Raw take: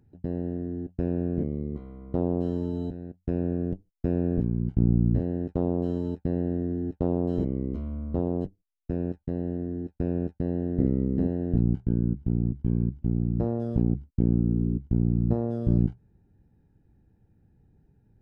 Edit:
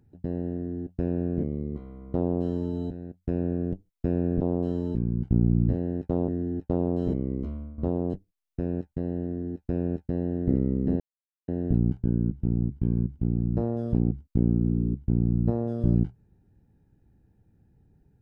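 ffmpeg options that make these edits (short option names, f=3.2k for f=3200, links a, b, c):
-filter_complex "[0:a]asplit=6[a][b][c][d][e][f];[a]atrim=end=4.412[g];[b]atrim=start=2.188:end=2.732[h];[c]atrim=start=4.408:end=5.742[i];[d]atrim=start=6.588:end=8.09,asetpts=PTS-STARTPTS,afade=t=out:st=1.202:d=0.3:silence=0.251189[j];[e]atrim=start=8.09:end=11.31,asetpts=PTS-STARTPTS,afade=t=in:d=0.004:c=hsin:silence=0.251189,afade=t=out:st=3.216:d=0.004:c=hsin,apad=pad_dur=0.48[k];[f]atrim=start=11.31,asetpts=PTS-STARTPTS,afade=t=in:d=0.004:c=hsin[l];[g][h]acrossfade=d=0.004:c1=hsin:c2=hsin[m];[m][i]acrossfade=d=0.004:c1=hsin:c2=hsin[n];[j][k][l]concat=n=3:v=0:a=1[o];[n][o]acrossfade=d=0.004:c1=hsin:c2=hsin"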